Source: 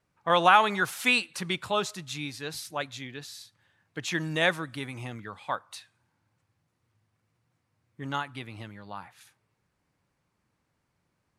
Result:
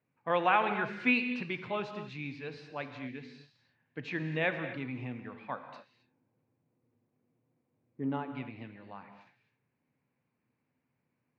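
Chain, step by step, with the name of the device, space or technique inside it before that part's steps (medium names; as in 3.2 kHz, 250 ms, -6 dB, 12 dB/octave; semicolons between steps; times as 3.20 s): 5.76–8.30 s: FFT filter 130 Hz 0 dB, 410 Hz +9 dB, 1.8 kHz -6 dB; guitar cabinet (cabinet simulation 110–3700 Hz, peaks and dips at 130 Hz +7 dB, 250 Hz +9 dB, 460 Hz +4 dB, 1.3 kHz -4 dB, 2.4 kHz +5 dB, 3.4 kHz -9 dB); gated-style reverb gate 290 ms flat, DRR 7.5 dB; trim -7 dB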